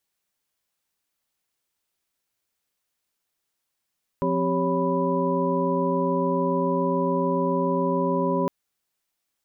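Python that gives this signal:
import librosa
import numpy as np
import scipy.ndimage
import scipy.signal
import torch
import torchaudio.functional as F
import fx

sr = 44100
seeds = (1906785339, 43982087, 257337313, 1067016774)

y = fx.chord(sr, length_s=4.26, notes=(53, 60, 67, 73, 83), wave='sine', level_db=-27.0)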